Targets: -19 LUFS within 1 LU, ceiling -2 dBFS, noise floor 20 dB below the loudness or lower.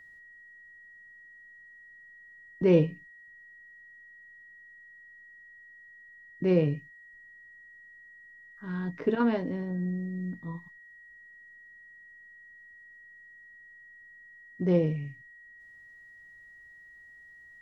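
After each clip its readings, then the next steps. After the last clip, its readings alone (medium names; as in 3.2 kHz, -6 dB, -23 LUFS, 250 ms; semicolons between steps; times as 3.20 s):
steady tone 1.9 kHz; tone level -50 dBFS; loudness -29.0 LUFS; peak level -10.0 dBFS; loudness target -19.0 LUFS
-> band-stop 1.9 kHz, Q 30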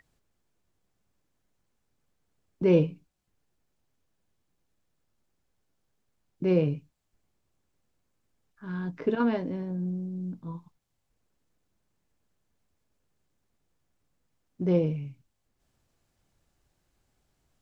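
steady tone not found; loudness -28.5 LUFS; peak level -10.5 dBFS; loudness target -19.0 LUFS
-> trim +9.5 dB; peak limiter -2 dBFS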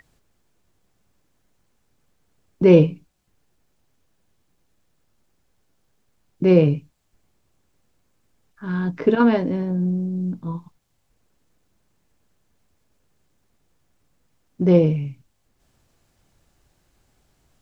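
loudness -19.5 LUFS; peak level -2.0 dBFS; noise floor -68 dBFS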